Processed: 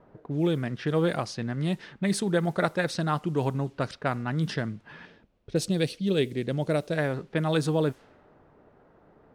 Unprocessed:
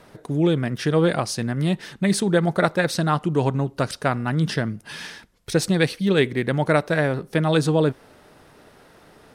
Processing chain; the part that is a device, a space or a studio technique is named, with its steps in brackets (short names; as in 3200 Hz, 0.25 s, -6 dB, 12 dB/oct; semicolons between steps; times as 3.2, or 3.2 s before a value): cassette deck with a dynamic noise filter (white noise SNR 33 dB; low-pass opened by the level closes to 1000 Hz, open at -16 dBFS); 5.05–6.98 band shelf 1300 Hz -8.5 dB; gain -6 dB